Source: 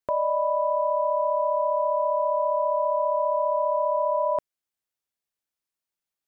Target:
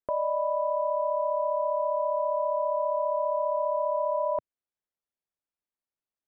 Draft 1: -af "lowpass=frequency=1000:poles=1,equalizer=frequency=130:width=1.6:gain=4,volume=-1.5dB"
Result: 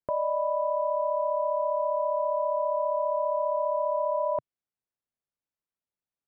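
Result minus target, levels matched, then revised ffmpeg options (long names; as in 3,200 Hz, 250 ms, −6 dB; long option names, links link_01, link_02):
125 Hz band +5.5 dB
-af "lowpass=frequency=1000:poles=1,equalizer=frequency=130:width=1.6:gain=-4.5,volume=-1.5dB"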